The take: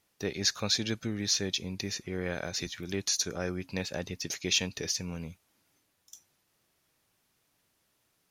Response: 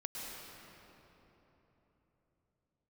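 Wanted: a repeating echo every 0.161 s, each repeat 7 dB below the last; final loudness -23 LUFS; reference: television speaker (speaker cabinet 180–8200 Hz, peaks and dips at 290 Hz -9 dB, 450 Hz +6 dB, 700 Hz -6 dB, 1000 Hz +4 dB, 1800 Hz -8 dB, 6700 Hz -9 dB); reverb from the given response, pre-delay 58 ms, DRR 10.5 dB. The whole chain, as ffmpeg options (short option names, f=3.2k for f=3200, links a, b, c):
-filter_complex "[0:a]aecho=1:1:161|322|483|644|805:0.447|0.201|0.0905|0.0407|0.0183,asplit=2[a][b];[1:a]atrim=start_sample=2205,adelay=58[c];[b][c]afir=irnorm=-1:irlink=0,volume=-11dB[d];[a][d]amix=inputs=2:normalize=0,highpass=f=180:w=0.5412,highpass=f=180:w=1.3066,equalizer=f=290:t=q:w=4:g=-9,equalizer=f=450:t=q:w=4:g=6,equalizer=f=700:t=q:w=4:g=-6,equalizer=f=1k:t=q:w=4:g=4,equalizer=f=1.8k:t=q:w=4:g=-8,equalizer=f=6.7k:t=q:w=4:g=-9,lowpass=f=8.2k:w=0.5412,lowpass=f=8.2k:w=1.3066,volume=9dB"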